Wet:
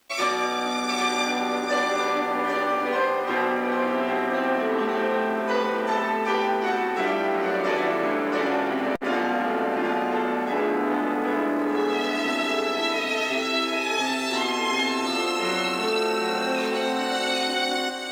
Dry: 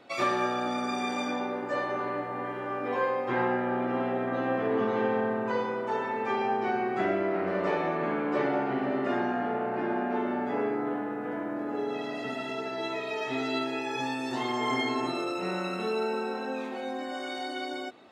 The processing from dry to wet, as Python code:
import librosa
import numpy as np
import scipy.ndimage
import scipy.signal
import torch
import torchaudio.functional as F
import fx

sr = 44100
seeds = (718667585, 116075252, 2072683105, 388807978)

p1 = scipy.signal.sosfilt(scipy.signal.butter(4, 200.0, 'highpass', fs=sr, output='sos'), x)
p2 = fx.high_shelf(p1, sr, hz=2600.0, db=11.0)
p3 = fx.rider(p2, sr, range_db=4, speed_s=0.5)
p4 = np.sign(p3) * np.maximum(np.abs(p3) - 10.0 ** (-53.0 / 20.0), 0.0)
p5 = fx.quant_dither(p4, sr, seeds[0], bits=12, dither='triangular')
p6 = p5 + fx.echo_single(p5, sr, ms=791, db=-6.0, dry=0)
p7 = fx.buffer_glitch(p6, sr, at_s=(8.95,), block=256, repeats=8)
p8 = fx.transformer_sat(p7, sr, knee_hz=870.0)
y = p8 * 10.0 ** (5.0 / 20.0)